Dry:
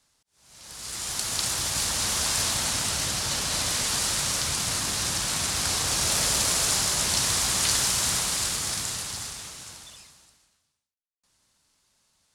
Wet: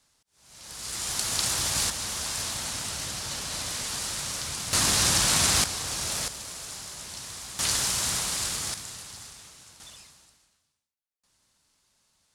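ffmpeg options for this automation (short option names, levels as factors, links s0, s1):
-af "asetnsamples=n=441:p=0,asendcmd='1.9 volume volume -6dB;4.73 volume volume 5dB;5.64 volume volume -6dB;6.28 volume volume -15dB;7.59 volume volume -2.5dB;8.74 volume volume -9dB;9.8 volume volume -1dB',volume=1.06"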